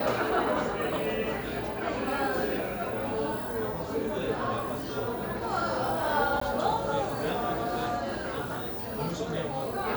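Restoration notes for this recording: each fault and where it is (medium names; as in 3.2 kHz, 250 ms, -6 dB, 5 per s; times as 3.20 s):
6.40–6.41 s: dropout 14 ms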